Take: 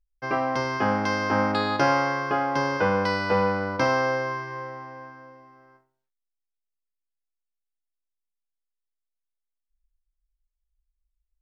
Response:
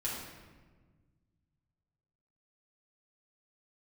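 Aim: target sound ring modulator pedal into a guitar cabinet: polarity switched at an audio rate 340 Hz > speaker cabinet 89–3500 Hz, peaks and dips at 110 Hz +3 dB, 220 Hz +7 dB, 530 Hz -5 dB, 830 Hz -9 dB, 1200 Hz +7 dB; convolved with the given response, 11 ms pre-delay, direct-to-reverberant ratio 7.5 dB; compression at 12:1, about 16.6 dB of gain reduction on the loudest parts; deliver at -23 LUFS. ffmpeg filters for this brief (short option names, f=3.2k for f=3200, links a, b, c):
-filter_complex "[0:a]acompressor=threshold=-35dB:ratio=12,asplit=2[a][b];[1:a]atrim=start_sample=2205,adelay=11[c];[b][c]afir=irnorm=-1:irlink=0,volume=-11dB[d];[a][d]amix=inputs=2:normalize=0,aeval=exprs='val(0)*sgn(sin(2*PI*340*n/s))':c=same,highpass=89,equalizer=f=110:t=q:w=4:g=3,equalizer=f=220:t=q:w=4:g=7,equalizer=f=530:t=q:w=4:g=-5,equalizer=f=830:t=q:w=4:g=-9,equalizer=f=1.2k:t=q:w=4:g=7,lowpass=f=3.5k:w=0.5412,lowpass=f=3.5k:w=1.3066,volume=15dB"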